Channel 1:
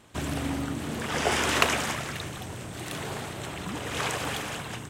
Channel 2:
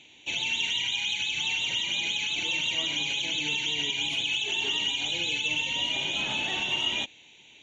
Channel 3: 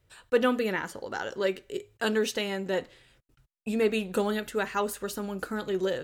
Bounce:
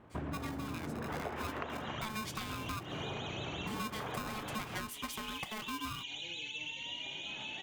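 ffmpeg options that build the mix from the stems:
ffmpeg -i stem1.wav -i stem2.wav -i stem3.wav -filter_complex "[0:a]lowpass=1400,volume=-1dB[link_01];[1:a]lowpass=6800,adelay=1100,volume=-13dB[link_02];[2:a]highpass=frequency=280:width=0.5412,highpass=frequency=280:width=1.3066,dynaudnorm=framelen=260:gausssize=7:maxgain=7.5dB,aeval=exprs='val(0)*sgn(sin(2*PI*650*n/s))':channel_layout=same,volume=-10.5dB,asplit=2[link_03][link_04];[link_04]apad=whole_len=384957[link_05];[link_02][link_05]sidechaincompress=threshold=-40dB:ratio=8:attack=16:release=204[link_06];[link_01][link_06][link_03]amix=inputs=3:normalize=0,acompressor=threshold=-36dB:ratio=10" out.wav

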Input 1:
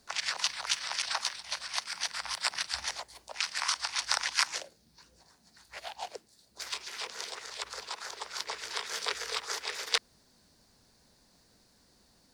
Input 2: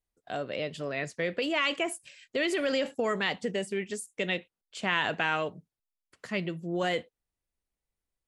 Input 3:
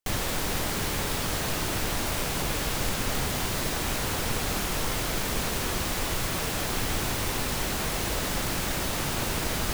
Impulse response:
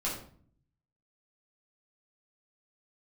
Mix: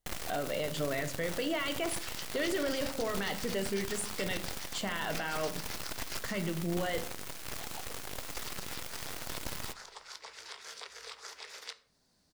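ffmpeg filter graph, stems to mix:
-filter_complex "[0:a]acompressor=threshold=-35dB:ratio=4,adelay=1750,volume=-8.5dB,asplit=2[link_01][link_02];[link_02]volume=-15dB[link_03];[1:a]bandreject=frequency=2500:width=5.7,acompressor=threshold=-34dB:ratio=6,volume=-2dB,asplit=2[link_04][link_05];[link_05]volume=-8.5dB[link_06];[2:a]aeval=exprs='0.2*(cos(1*acos(clip(val(0)/0.2,-1,1)))-cos(1*PI/2))+0.0501*(cos(6*acos(clip(val(0)/0.2,-1,1)))-cos(6*PI/2))+0.0447*(cos(7*acos(clip(val(0)/0.2,-1,1)))-cos(7*PI/2))+0.0126*(cos(8*acos(clip(val(0)/0.2,-1,1)))-cos(8*PI/2))':channel_layout=same,volume=-18.5dB,asplit=2[link_07][link_08];[link_08]volume=-17dB[link_09];[link_04][link_07]amix=inputs=2:normalize=0,acontrast=73,alimiter=level_in=1.5dB:limit=-24dB:level=0:latency=1:release=12,volume=-1.5dB,volume=0dB[link_10];[3:a]atrim=start_sample=2205[link_11];[link_03][link_06][link_09]amix=inputs=3:normalize=0[link_12];[link_12][link_11]afir=irnorm=-1:irlink=0[link_13];[link_01][link_10][link_13]amix=inputs=3:normalize=0"

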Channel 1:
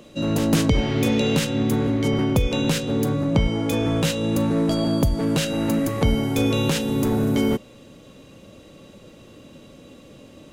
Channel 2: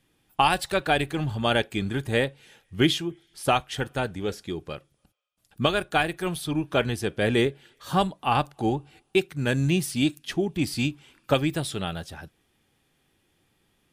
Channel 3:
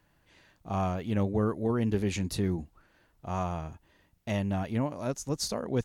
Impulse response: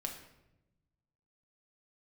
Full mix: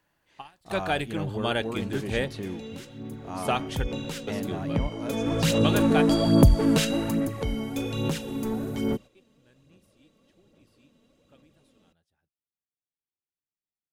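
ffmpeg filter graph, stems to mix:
-filter_complex "[0:a]agate=range=-9dB:threshold=-34dB:ratio=16:detection=peak,aphaser=in_gain=1:out_gain=1:delay=4.6:decay=0.47:speed=1.2:type=sinusoidal,adelay=1400,volume=-1dB,afade=type=in:start_time=3.14:duration=0.78:silence=0.354813,afade=type=in:start_time=5.03:duration=0.61:silence=0.266073,afade=type=out:start_time=6.78:duration=0.49:silence=0.334965[link_01];[1:a]volume=-4.5dB[link_02];[2:a]acrossover=split=4500[link_03][link_04];[link_04]acompressor=threshold=-50dB:ratio=4:attack=1:release=60[link_05];[link_03][link_05]amix=inputs=2:normalize=0,lowshelf=frequency=190:gain=-11,volume=-2dB,asplit=2[link_06][link_07];[link_07]apad=whole_len=614212[link_08];[link_02][link_08]sidechaingate=range=-34dB:threshold=-59dB:ratio=16:detection=peak[link_09];[link_01][link_09][link_06]amix=inputs=3:normalize=0"

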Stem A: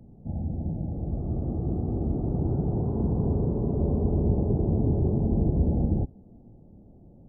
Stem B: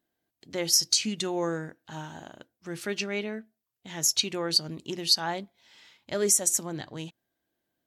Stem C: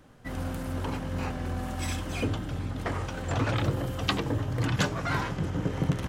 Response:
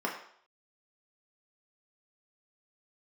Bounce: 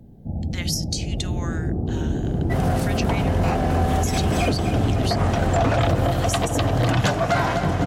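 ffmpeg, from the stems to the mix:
-filter_complex "[0:a]volume=-3.5dB[link_01];[1:a]highpass=1500,acompressor=threshold=-32dB:ratio=6,volume=-1dB,asplit=2[link_02][link_03];[2:a]equalizer=frequency=690:width_type=o:width=0.31:gain=14,dynaudnorm=framelen=240:gausssize=9:maxgain=4dB,adelay=2250,volume=2dB,asplit=2[link_04][link_05];[link_05]volume=-11dB[link_06];[link_03]apad=whole_len=367466[link_07];[link_04][link_07]sidechaincompress=threshold=-36dB:ratio=8:attack=7.6:release=237[link_08];[link_06]aecho=0:1:252|504|756|1008|1260|1512|1764:1|0.47|0.221|0.104|0.0488|0.0229|0.0108[link_09];[link_01][link_02][link_08][link_09]amix=inputs=4:normalize=0,acontrast=85,alimiter=limit=-11.5dB:level=0:latency=1:release=328"

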